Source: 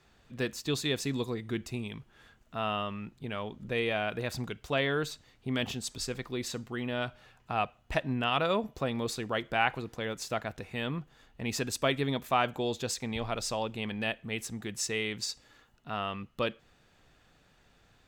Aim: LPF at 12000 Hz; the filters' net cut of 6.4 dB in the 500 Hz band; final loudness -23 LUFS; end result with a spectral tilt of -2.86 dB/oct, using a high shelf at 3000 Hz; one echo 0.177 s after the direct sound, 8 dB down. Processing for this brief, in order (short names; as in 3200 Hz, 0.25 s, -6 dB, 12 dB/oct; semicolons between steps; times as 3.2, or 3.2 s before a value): LPF 12000 Hz; bell 500 Hz -8.5 dB; high shelf 3000 Hz +6 dB; echo 0.177 s -8 dB; gain +9.5 dB